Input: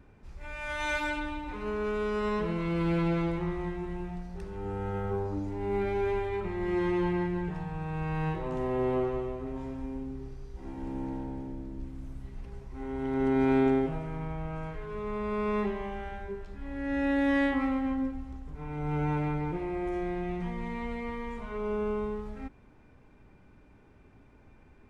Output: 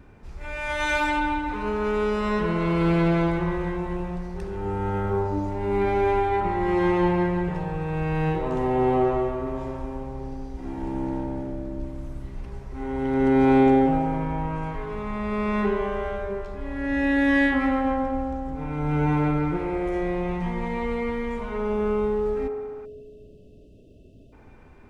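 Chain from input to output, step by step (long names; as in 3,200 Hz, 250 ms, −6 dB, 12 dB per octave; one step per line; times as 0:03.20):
delay with a band-pass on its return 64 ms, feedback 81%, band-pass 780 Hz, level −5 dB
time-frequency box erased 0:22.85–0:24.33, 700–2,500 Hz
level +6.5 dB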